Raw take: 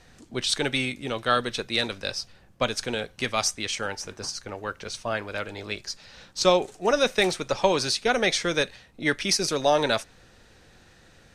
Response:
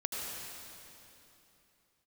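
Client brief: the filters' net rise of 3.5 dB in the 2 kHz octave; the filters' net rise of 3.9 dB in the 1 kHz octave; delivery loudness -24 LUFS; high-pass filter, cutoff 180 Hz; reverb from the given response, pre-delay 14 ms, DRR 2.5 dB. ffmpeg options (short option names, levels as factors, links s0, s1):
-filter_complex "[0:a]highpass=180,equalizer=f=1000:t=o:g=4.5,equalizer=f=2000:t=o:g=3,asplit=2[s0][s1];[1:a]atrim=start_sample=2205,adelay=14[s2];[s1][s2]afir=irnorm=-1:irlink=0,volume=0.473[s3];[s0][s3]amix=inputs=2:normalize=0,volume=0.841"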